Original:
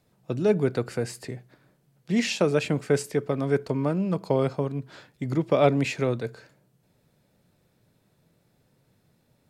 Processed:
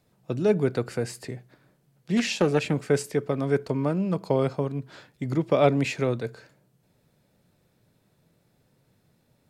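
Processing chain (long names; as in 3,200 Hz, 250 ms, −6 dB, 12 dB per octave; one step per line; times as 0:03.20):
0:02.17–0:02.74: highs frequency-modulated by the lows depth 0.28 ms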